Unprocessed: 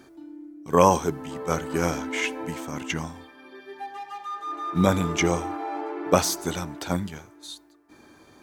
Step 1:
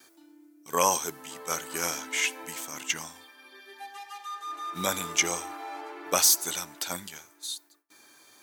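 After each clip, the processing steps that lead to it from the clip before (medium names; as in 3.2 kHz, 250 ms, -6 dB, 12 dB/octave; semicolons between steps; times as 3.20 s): gate with hold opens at -47 dBFS; tilt EQ +4.5 dB/octave; trim -5.5 dB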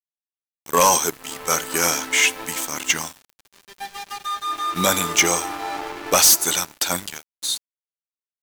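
waveshaping leveller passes 3; small samples zeroed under -39.5 dBFS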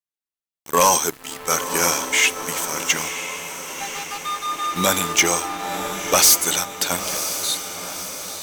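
echo that smears into a reverb 1002 ms, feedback 56%, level -9.5 dB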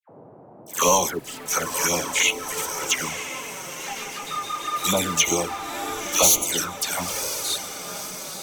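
touch-sensitive flanger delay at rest 11.7 ms, full sweep at -14.5 dBFS; band noise 110–790 Hz -47 dBFS; phase dispersion lows, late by 92 ms, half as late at 1.5 kHz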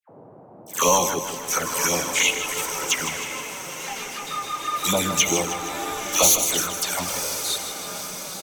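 feedback delay 157 ms, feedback 58%, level -10 dB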